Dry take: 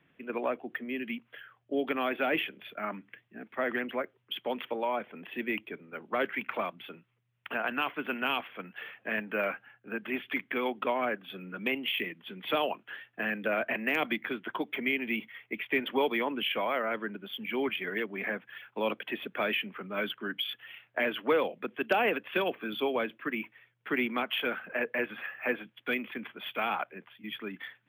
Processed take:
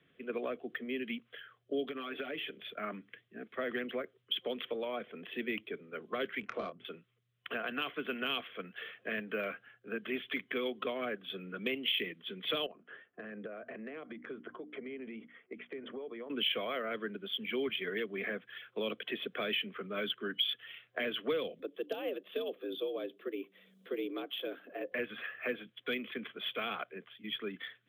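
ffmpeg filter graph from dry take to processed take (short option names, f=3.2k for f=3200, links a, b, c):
-filter_complex "[0:a]asettb=1/sr,asplit=3[a][b][c];[a]atrim=end=1.884[d];[b]atrim=start=1.88:end=2.51,asetpts=PTS-STARTPTS,afade=t=in:d=0.004:c=qsin,afade=t=out:st=0.626:d=0.004:c=qsin,aecho=1:1:7:0.84,atrim=end_sample=27783,acompressor=threshold=-34dB:ratio=10:attack=3.2:release=140:knee=1:detection=peak[e];[c]atrim=start=2.506[f];[d][e]acrossfade=d=0.004:c1=hsin:c2=qsin[g];[g][f]acrossfade=d=0.004:c1=qsin:c2=hsin,asettb=1/sr,asplit=3[h][i][j];[h]atrim=end=6.404[k];[i]atrim=start=6.4:end=6.85,asetpts=PTS-STARTPTS,afade=t=in:d=0.004:c=qsin,afade=t=out:st=0.446:d=0.004:c=qsin,asplit=2[l][m];[m]adelay=25,volume=-6dB[n];[l][n]amix=inputs=2:normalize=0,atrim=end_sample=19845,adynamicsmooth=sensitivity=1:basefreq=1.2k[o];[j]atrim=start=6.846[p];[k][o]acrossfade=d=0.004:c1=hsin:c2=qsin[q];[q][p]acrossfade=d=0.004:c1=qsin:c2=hsin,asettb=1/sr,asplit=3[r][s][t];[r]atrim=end=12.664[u];[s]atrim=start=12.66:end=16.3,asetpts=PTS-STARTPTS,afade=t=in:d=0.004:c=qsin,afade=t=out:st=3.636:d=0.004:c=qsin,lowpass=1.3k,bandreject=f=60:t=h:w=6,bandreject=f=120:t=h:w=6,bandreject=f=180:t=h:w=6,bandreject=f=240:t=h:w=6,bandreject=f=300:t=h:w=6,acompressor=threshold=-39dB:ratio=10:attack=3.2:release=140:knee=1:detection=peak[v];[t]atrim=start=16.296[w];[u][v]acrossfade=d=0.004:c1=hsin:c2=qsin[x];[x][w]acrossfade=d=0.004:c1=qsin:c2=hsin,asettb=1/sr,asplit=3[y][z][aa];[y]atrim=end=21.594[ab];[z]atrim=start=21.59:end=24.92,asetpts=PTS-STARTPTS,afade=t=in:d=0.004:c=qsin,afade=t=out:st=3.326:d=0.004:c=qsin,equalizer=f=1.8k:w=0.54:g=-14.5,acompressor=mode=upward:threshold=-47dB:ratio=2.5:attack=3.2:release=140:knee=2.83:detection=peak,afreqshift=70[ac];[aa]atrim=start=24.916[ad];[ab][ac]acrossfade=d=0.004:c1=hsin:c2=qsin[ae];[ae][ad]acrossfade=d=0.004:c1=qsin:c2=hsin,superequalizer=7b=1.78:9b=0.355:13b=2,acrossover=split=240|3000[af][ag][ah];[ag]acompressor=threshold=-33dB:ratio=3[ai];[af][ai][ah]amix=inputs=3:normalize=0,highshelf=f=12k:g=-7,volume=-2.5dB"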